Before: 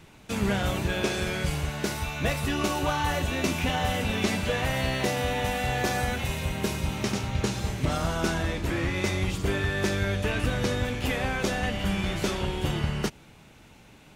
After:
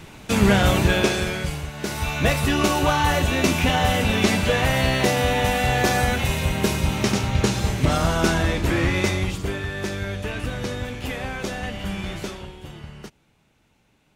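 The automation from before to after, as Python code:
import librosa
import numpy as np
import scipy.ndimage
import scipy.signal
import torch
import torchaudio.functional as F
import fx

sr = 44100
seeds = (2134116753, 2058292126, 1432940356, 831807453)

y = fx.gain(x, sr, db=fx.line((0.9, 9.5), (1.72, -2.5), (2.09, 7.0), (8.95, 7.0), (9.6, -1.5), (12.16, -1.5), (12.58, -11.0)))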